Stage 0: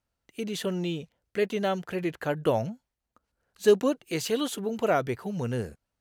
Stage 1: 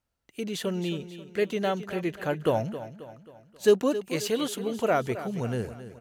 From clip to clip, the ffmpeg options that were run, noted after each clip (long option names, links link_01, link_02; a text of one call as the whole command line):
ffmpeg -i in.wav -af "aecho=1:1:268|536|804|1072|1340:0.224|0.105|0.0495|0.0232|0.0109" out.wav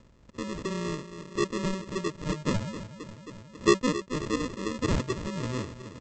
ffmpeg -i in.wav -af "acompressor=mode=upward:threshold=-33dB:ratio=2.5,aresample=16000,acrusher=samples=21:mix=1:aa=0.000001,aresample=44100,volume=-2dB" out.wav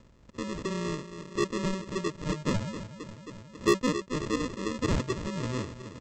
ffmpeg -i in.wav -af "asoftclip=type=tanh:threshold=-15.5dB" out.wav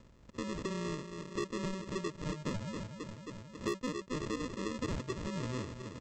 ffmpeg -i in.wav -af "acompressor=threshold=-32dB:ratio=5,volume=-2dB" out.wav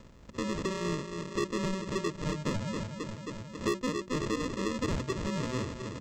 ffmpeg -i in.wav -filter_complex "[0:a]asplit=2[link_01][link_02];[link_02]asoftclip=type=tanh:threshold=-39dB,volume=-7.5dB[link_03];[link_01][link_03]amix=inputs=2:normalize=0,bandreject=frequency=60:width_type=h:width=6,bandreject=frequency=120:width_type=h:width=6,bandreject=frequency=180:width_type=h:width=6,bandreject=frequency=240:width_type=h:width=6,bandreject=frequency=300:width_type=h:width=6,bandreject=frequency=360:width_type=h:width=6,volume=4dB" out.wav